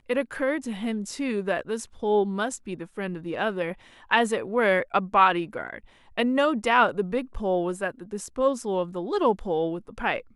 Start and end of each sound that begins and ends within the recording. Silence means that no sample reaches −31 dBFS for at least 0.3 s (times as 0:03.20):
0:04.11–0:05.78